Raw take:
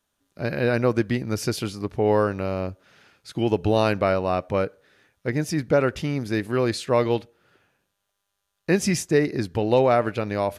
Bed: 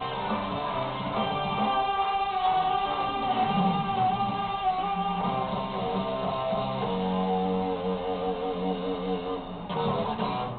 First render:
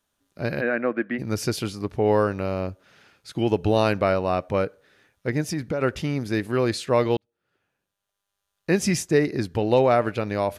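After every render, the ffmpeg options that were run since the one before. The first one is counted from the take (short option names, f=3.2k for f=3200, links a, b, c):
-filter_complex "[0:a]asplit=3[a][b][c];[a]afade=t=out:st=0.6:d=0.02[d];[b]highpass=f=230:w=0.5412,highpass=f=230:w=1.3066,equalizer=f=410:t=q:w=4:g=-9,equalizer=f=930:t=q:w=4:g=-8,equalizer=f=1.7k:t=q:w=4:g=5,lowpass=f=2.4k:w=0.5412,lowpass=f=2.4k:w=1.3066,afade=t=in:st=0.6:d=0.02,afade=t=out:st=1.18:d=0.02[e];[c]afade=t=in:st=1.18:d=0.02[f];[d][e][f]amix=inputs=3:normalize=0,asplit=3[g][h][i];[g]afade=t=out:st=5.41:d=0.02[j];[h]acompressor=threshold=-22dB:ratio=6:attack=3.2:release=140:knee=1:detection=peak,afade=t=in:st=5.41:d=0.02,afade=t=out:st=5.81:d=0.02[k];[i]afade=t=in:st=5.81:d=0.02[l];[j][k][l]amix=inputs=3:normalize=0,asplit=2[m][n];[m]atrim=end=7.17,asetpts=PTS-STARTPTS,afade=t=out:st=7.166:d=0.004:c=hsin[o];[n]atrim=start=7.17,asetpts=PTS-STARTPTS,afade=t=in:d=1.69[p];[o][p]concat=n=2:v=0:a=1"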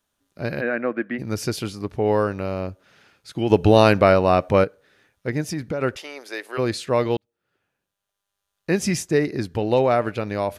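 -filter_complex "[0:a]asplit=3[a][b][c];[a]afade=t=out:st=5.95:d=0.02[d];[b]highpass=f=470:w=0.5412,highpass=f=470:w=1.3066,afade=t=in:st=5.95:d=0.02,afade=t=out:st=6.57:d=0.02[e];[c]afade=t=in:st=6.57:d=0.02[f];[d][e][f]amix=inputs=3:normalize=0,asplit=3[g][h][i];[g]atrim=end=3.502[j];[h]atrim=start=3.498:end=4.642,asetpts=PTS-STARTPTS,volume=6.5dB[k];[i]atrim=start=4.638[l];[j][k]acrossfade=d=0.004:c1=hsin:c2=hsin[m];[m][l]acrossfade=d=0.004:c1=hsin:c2=hsin"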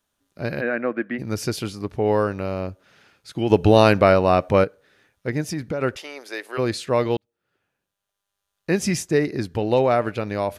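-af anull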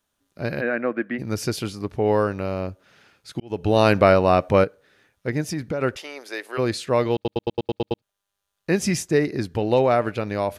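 -filter_complex "[0:a]asplit=10[a][b][c][d][e][f][g][h][i][j];[a]atrim=end=3.4,asetpts=PTS-STARTPTS,afade=t=out:st=3.396:d=0.004:c=hsin[k];[b]atrim=start=3.4:end=7.252,asetpts=PTS-STARTPTS,afade=t=in:d=0.58[l];[c]atrim=start=7.138:end=7.252[m];[d]atrim=start=7.138:end=7.252[n];[e]atrim=start=7.138:end=7.252[o];[f]atrim=start=7.138:end=7.252[p];[g]atrim=start=7.138:end=7.252[q];[h]atrim=start=7.138:end=7.252[r];[i]atrim=start=7.138:end=7.252[s];[j]atrim=start=8.018[t];[k][l]concat=n=2:v=0:a=1[u];[u][m]acrossfade=d=0.004:c1=hsin:c2=hsin[v];[v][n]acrossfade=d=0.004:c1=hsin:c2=hsin[w];[w][o]acrossfade=d=0.004:c1=hsin:c2=hsin[x];[x][p]acrossfade=d=0.004:c1=hsin:c2=hsin[y];[y][q]acrossfade=d=0.004:c1=hsin:c2=hsin[z];[z][r]acrossfade=d=0.004:c1=hsin:c2=hsin[aa];[aa][s]acrossfade=d=0.004:c1=hsin:c2=hsin[ab];[ab][t]acrossfade=d=0.004:c1=hsin:c2=hsin"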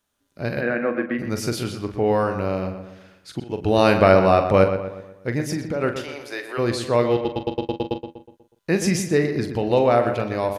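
-filter_complex "[0:a]asplit=2[a][b];[b]adelay=42,volume=-9dB[c];[a][c]amix=inputs=2:normalize=0,asplit=2[d][e];[e]adelay=122,lowpass=f=3k:p=1,volume=-8.5dB,asplit=2[f][g];[g]adelay=122,lowpass=f=3k:p=1,volume=0.47,asplit=2[h][i];[i]adelay=122,lowpass=f=3k:p=1,volume=0.47,asplit=2[j][k];[k]adelay=122,lowpass=f=3k:p=1,volume=0.47,asplit=2[l][m];[m]adelay=122,lowpass=f=3k:p=1,volume=0.47[n];[f][h][j][l][n]amix=inputs=5:normalize=0[o];[d][o]amix=inputs=2:normalize=0"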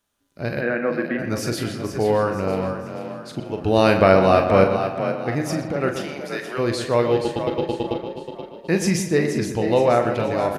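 -filter_complex "[0:a]asplit=2[a][b];[b]adelay=36,volume=-13dB[c];[a][c]amix=inputs=2:normalize=0,asplit=2[d][e];[e]asplit=4[f][g][h][i];[f]adelay=477,afreqshift=33,volume=-9dB[j];[g]adelay=954,afreqshift=66,volume=-17dB[k];[h]adelay=1431,afreqshift=99,volume=-24.9dB[l];[i]adelay=1908,afreqshift=132,volume=-32.9dB[m];[j][k][l][m]amix=inputs=4:normalize=0[n];[d][n]amix=inputs=2:normalize=0"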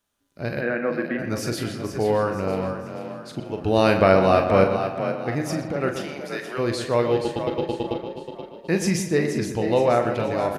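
-af "volume=-2dB"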